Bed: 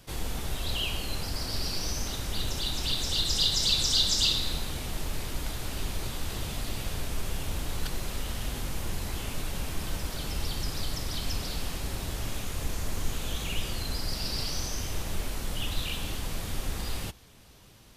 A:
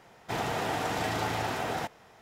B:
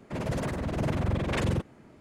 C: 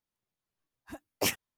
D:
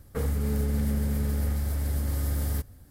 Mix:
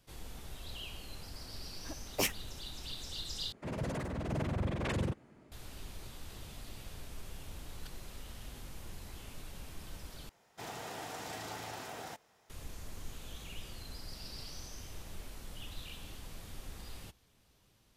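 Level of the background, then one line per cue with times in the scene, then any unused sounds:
bed -14 dB
0.97 add C -3 dB
3.52 replace with B -6.5 dB
10.29 replace with A -13 dB + tone controls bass -2 dB, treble +8 dB
not used: D

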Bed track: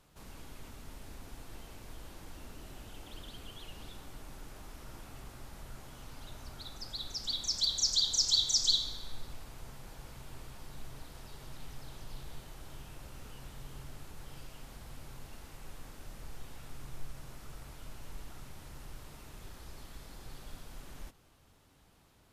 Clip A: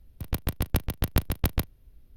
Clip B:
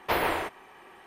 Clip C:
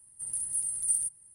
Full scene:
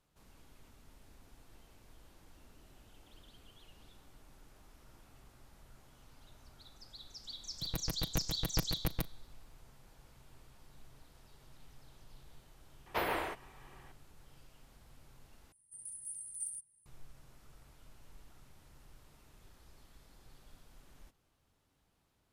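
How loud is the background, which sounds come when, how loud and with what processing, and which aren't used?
bed track -11.5 dB
7.41 add A -10 dB + comb 6.2 ms, depth 72%
12.86 add B -8 dB
15.52 replace with C -13.5 dB

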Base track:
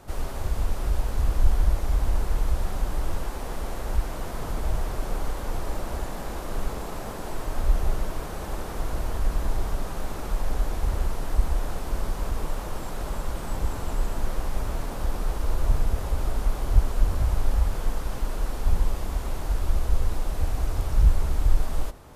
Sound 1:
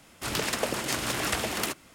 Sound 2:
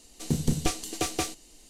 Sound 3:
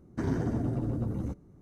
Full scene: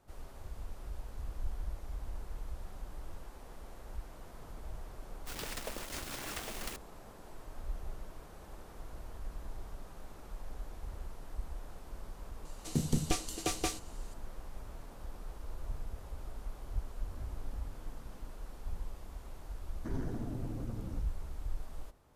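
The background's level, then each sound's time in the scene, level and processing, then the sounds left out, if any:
base track -18 dB
5.04 add 1 -14 dB + bit-crush 5-bit
12.45 add 2 -5 dB
16.99 add 3 -12 dB + compressor, threshold -44 dBFS
19.67 add 3 -10 dB

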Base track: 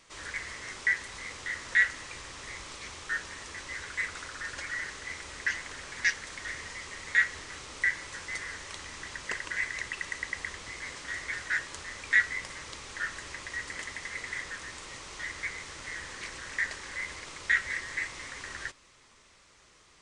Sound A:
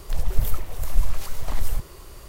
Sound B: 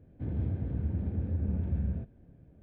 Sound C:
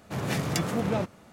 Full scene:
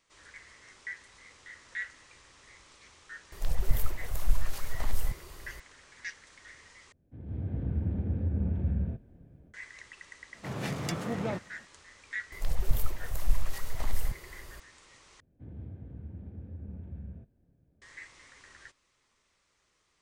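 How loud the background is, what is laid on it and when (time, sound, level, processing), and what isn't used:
base track -13.5 dB
3.32 add A -5 dB
6.92 replace with B -14 dB + AGC gain up to 15.5 dB
10.33 add C -5.5 dB + high shelf 9500 Hz -6.5 dB
12.32 add A -5.5 dB
15.2 replace with B -11.5 dB

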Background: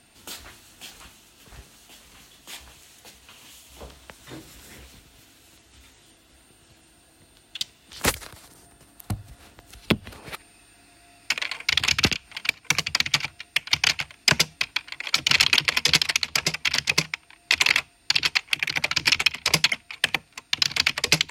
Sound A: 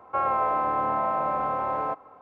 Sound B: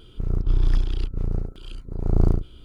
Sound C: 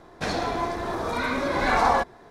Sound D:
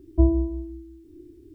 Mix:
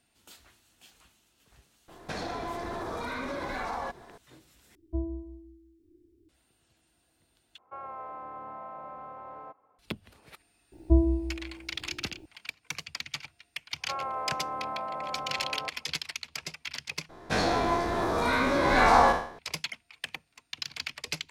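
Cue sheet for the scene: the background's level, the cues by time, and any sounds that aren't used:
background -15 dB
1.88 add C -1.5 dB + compressor, threshold -30 dBFS
4.75 replace with D -15 dB + doubler 12 ms -12.5 dB
7.58 replace with A -16.5 dB
10.72 add D -3 dB + buzz 60 Hz, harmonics 15, -56 dBFS -3 dB/oct
13.75 add A -9.5 dB, fades 0.10 s
17.09 replace with C -1 dB + spectral trails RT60 0.53 s
not used: B

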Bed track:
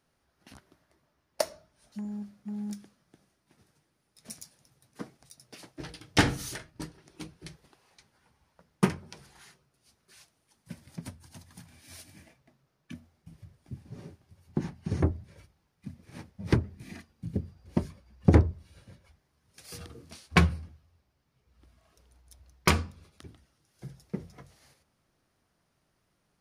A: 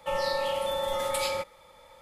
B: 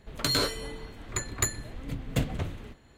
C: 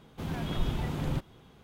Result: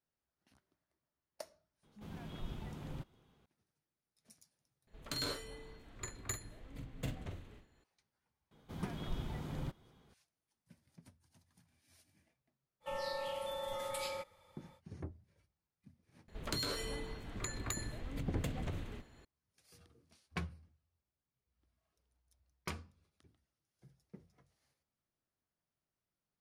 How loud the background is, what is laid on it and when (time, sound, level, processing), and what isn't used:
bed track -19.5 dB
1.83 add C -14 dB
4.87 replace with B -13.5 dB + doubler 45 ms -7.5 dB
8.51 add C -10 dB + notch 2700 Hz, Q 14
12.8 add A -11.5 dB, fades 0.05 s
16.28 add B -3.5 dB + compressor, threshold -31 dBFS

